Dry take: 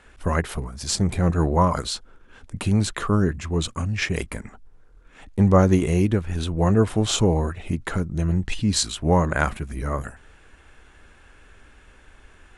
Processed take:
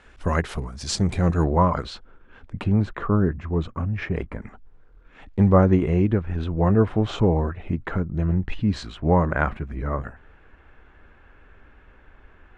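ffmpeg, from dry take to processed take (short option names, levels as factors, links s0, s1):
-af "asetnsamples=n=441:p=0,asendcmd='1.44 lowpass f 2700;2.64 lowpass f 1500;4.42 lowpass f 3400;5.48 lowpass f 2000',lowpass=6500"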